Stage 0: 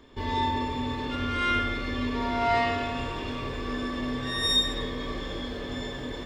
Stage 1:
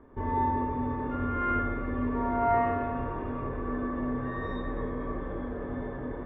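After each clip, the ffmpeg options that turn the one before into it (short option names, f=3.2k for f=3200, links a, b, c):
-af "lowpass=f=1.5k:w=0.5412,lowpass=f=1.5k:w=1.3066"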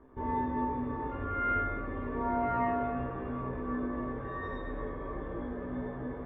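-af "flanger=delay=15.5:depth=3.1:speed=0.32"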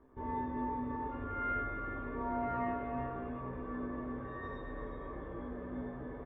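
-af "aecho=1:1:363:0.355,volume=-5.5dB"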